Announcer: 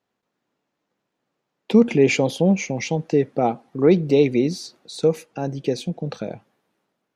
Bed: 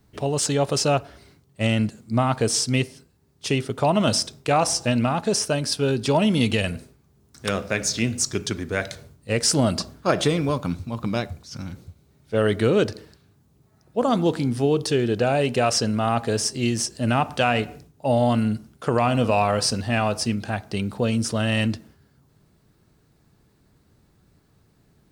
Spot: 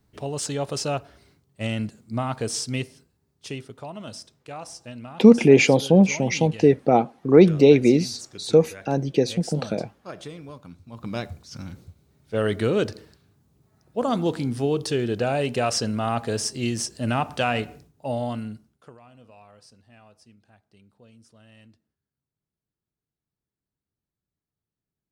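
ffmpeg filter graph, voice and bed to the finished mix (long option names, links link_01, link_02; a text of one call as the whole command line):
ffmpeg -i stem1.wav -i stem2.wav -filter_complex "[0:a]adelay=3500,volume=2.5dB[link_01];[1:a]volume=8.5dB,afade=type=out:start_time=3.03:duration=0.85:silence=0.266073,afade=type=in:start_time=10.82:duration=0.45:silence=0.188365,afade=type=out:start_time=17.55:duration=1.42:silence=0.0421697[link_02];[link_01][link_02]amix=inputs=2:normalize=0" out.wav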